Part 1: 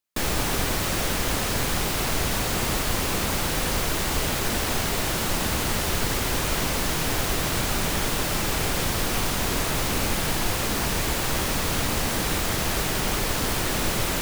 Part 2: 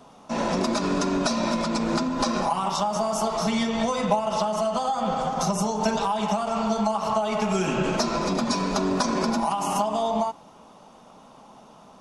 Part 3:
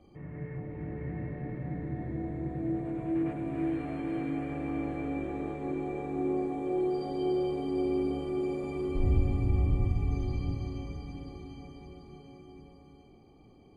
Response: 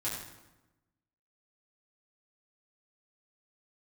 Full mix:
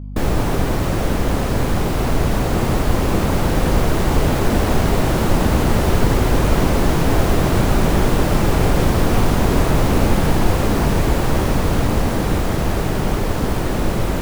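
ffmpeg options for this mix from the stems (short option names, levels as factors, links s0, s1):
-filter_complex "[0:a]tiltshelf=f=1400:g=8,dynaudnorm=f=290:g=21:m=1.58,aeval=exprs='val(0)+0.0316*(sin(2*PI*50*n/s)+sin(2*PI*2*50*n/s)/2+sin(2*PI*3*50*n/s)/3+sin(2*PI*4*50*n/s)/4+sin(2*PI*5*50*n/s)/5)':c=same,volume=1.19[s0];[1:a]lowpass=1100,volume=0.2[s1];[2:a]volume=0.562[s2];[s0][s1][s2]amix=inputs=3:normalize=0"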